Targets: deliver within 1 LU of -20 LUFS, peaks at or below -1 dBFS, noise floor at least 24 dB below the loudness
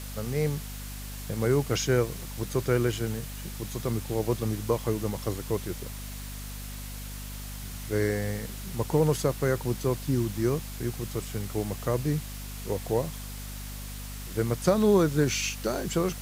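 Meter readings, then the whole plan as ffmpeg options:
hum 50 Hz; highest harmonic 250 Hz; hum level -37 dBFS; noise floor -38 dBFS; noise floor target -54 dBFS; loudness -29.5 LUFS; peak level -9.0 dBFS; loudness target -20.0 LUFS
-> -af "bandreject=f=50:t=h:w=4,bandreject=f=100:t=h:w=4,bandreject=f=150:t=h:w=4,bandreject=f=200:t=h:w=4,bandreject=f=250:t=h:w=4"
-af "afftdn=nr=16:nf=-38"
-af "volume=2.99,alimiter=limit=0.891:level=0:latency=1"

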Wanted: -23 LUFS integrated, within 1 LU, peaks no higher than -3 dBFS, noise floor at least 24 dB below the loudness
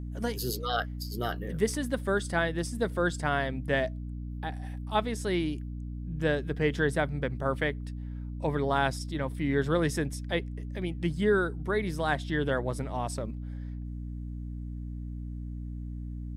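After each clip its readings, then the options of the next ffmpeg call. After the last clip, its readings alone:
hum 60 Hz; highest harmonic 300 Hz; hum level -34 dBFS; loudness -31.5 LUFS; peak level -14.0 dBFS; loudness target -23.0 LUFS
-> -af "bandreject=f=60:t=h:w=4,bandreject=f=120:t=h:w=4,bandreject=f=180:t=h:w=4,bandreject=f=240:t=h:w=4,bandreject=f=300:t=h:w=4"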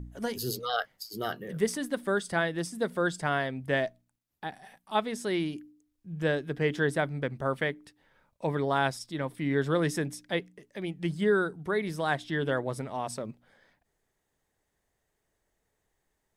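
hum not found; loudness -31.0 LUFS; peak level -14.0 dBFS; loudness target -23.0 LUFS
-> -af "volume=2.51"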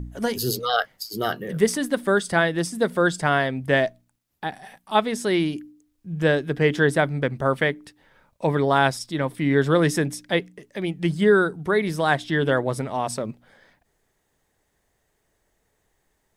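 loudness -23.0 LUFS; peak level -6.5 dBFS; noise floor -72 dBFS

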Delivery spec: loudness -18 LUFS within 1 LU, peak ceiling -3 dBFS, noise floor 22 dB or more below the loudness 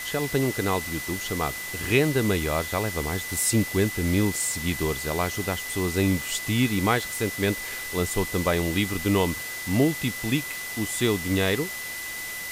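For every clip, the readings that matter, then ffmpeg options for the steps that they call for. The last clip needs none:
steady tone 2 kHz; tone level -34 dBFS; noise floor -34 dBFS; noise floor target -48 dBFS; loudness -25.5 LUFS; peak level -7.5 dBFS; loudness target -18.0 LUFS
-> -af "bandreject=f=2000:w=30"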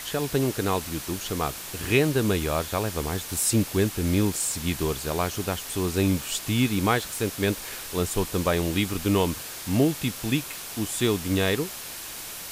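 steady tone not found; noise floor -38 dBFS; noise floor target -48 dBFS
-> -af "afftdn=nr=10:nf=-38"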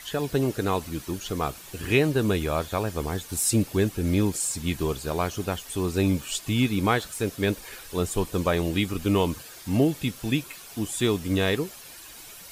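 noise floor -45 dBFS; noise floor target -49 dBFS
-> -af "afftdn=nr=6:nf=-45"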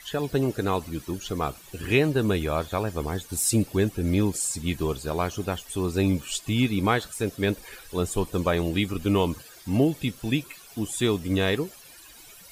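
noise floor -49 dBFS; loudness -26.5 LUFS; peak level -8.0 dBFS; loudness target -18.0 LUFS
-> -af "volume=2.66,alimiter=limit=0.708:level=0:latency=1"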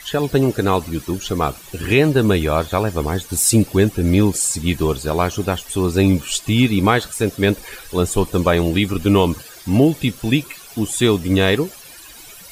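loudness -18.0 LUFS; peak level -3.0 dBFS; noise floor -40 dBFS

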